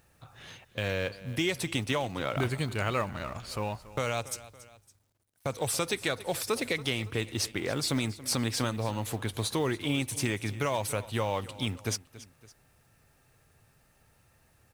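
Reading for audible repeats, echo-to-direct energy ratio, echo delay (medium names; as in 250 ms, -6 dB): 2, -16.5 dB, 281 ms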